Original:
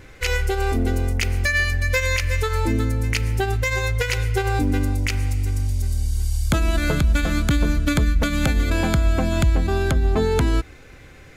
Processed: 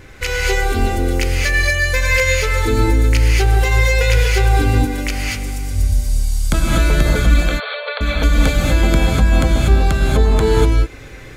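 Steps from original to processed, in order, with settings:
in parallel at 0 dB: downward compressor, threshold −25 dBFS, peak gain reduction 11.5 dB
0:07.34–0:08.01: on the sum: linear-phase brick-wall band-pass 430–4,600 Hz
reverb whose tail is shaped and stops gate 270 ms rising, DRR −3.5 dB
level −2.5 dB

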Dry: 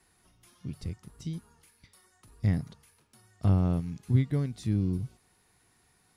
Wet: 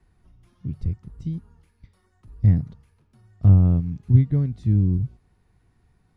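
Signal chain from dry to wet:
RIAA equalisation playback
level −2.5 dB

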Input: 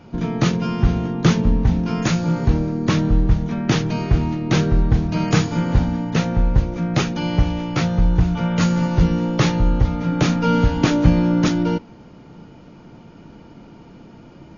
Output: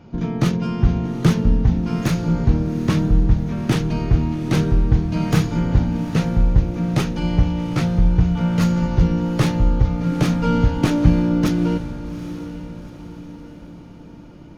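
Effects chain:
stylus tracing distortion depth 0.057 ms
low-shelf EQ 350 Hz +5 dB
on a send: feedback delay with all-pass diffusion 813 ms, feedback 47%, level −13 dB
on the sum: level −4 dB

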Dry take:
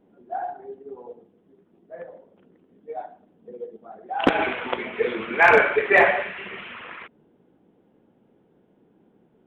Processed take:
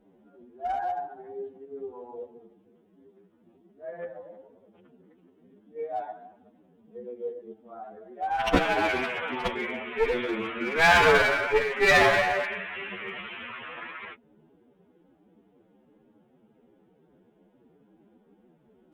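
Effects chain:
asymmetric clip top −24.5 dBFS
phase-vocoder stretch with locked phases 2×

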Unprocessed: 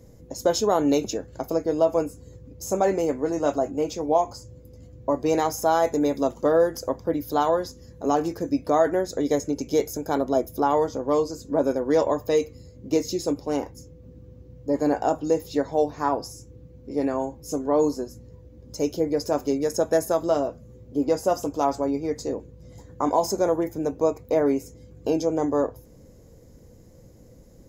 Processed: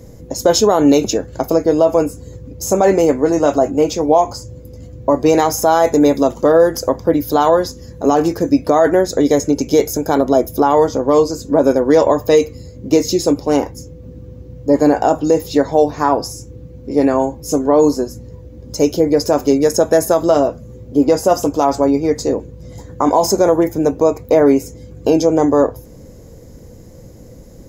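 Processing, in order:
boost into a limiter +12.5 dB
level −1 dB

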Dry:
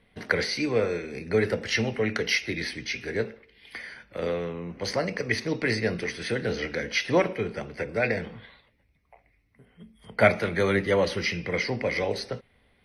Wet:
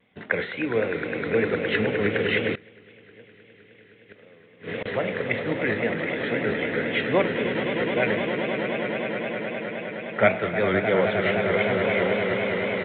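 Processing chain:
high-pass filter 120 Hz 12 dB per octave
echo that builds up and dies away 103 ms, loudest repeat 8, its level −10 dB
0:02.53–0:04.86: gate with flip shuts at −19 dBFS, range −25 dB
pitch vibrato 3.8 Hz 90 cents
downsampling to 8,000 Hz

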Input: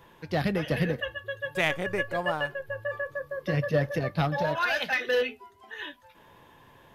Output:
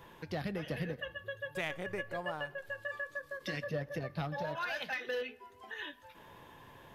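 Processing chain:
0:02.58–0:03.64: octave-band graphic EQ 125/250/500/2,000/4,000/8,000 Hz −11/+6/−5/+4/+7/+11 dB
downward compressor 2 to 1, threshold −43 dBFS, peak gain reduction 12.5 dB
on a send at −23.5 dB: convolution reverb RT60 1.6 s, pre-delay 69 ms
on the sum: every ending faded ahead of time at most 370 dB per second

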